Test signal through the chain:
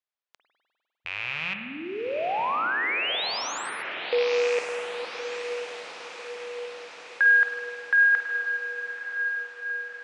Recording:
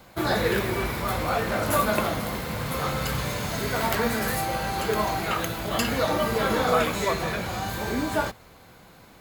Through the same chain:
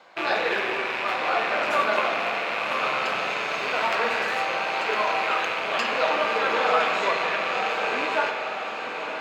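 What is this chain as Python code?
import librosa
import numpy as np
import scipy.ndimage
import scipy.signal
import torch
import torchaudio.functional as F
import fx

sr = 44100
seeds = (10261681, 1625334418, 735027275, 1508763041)

p1 = fx.rattle_buzz(x, sr, strikes_db=-37.0, level_db=-19.0)
p2 = scipy.signal.sosfilt(scipy.signal.butter(2, 560.0, 'highpass', fs=sr, output='sos'), p1)
p3 = fx.air_absorb(p2, sr, metres=150.0)
p4 = p3 + fx.echo_diffused(p3, sr, ms=1021, feedback_pct=63, wet_db=-8, dry=0)
p5 = fx.rev_spring(p4, sr, rt60_s=2.2, pass_ms=(50,), chirp_ms=75, drr_db=4.5)
y = p5 * librosa.db_to_amplitude(2.5)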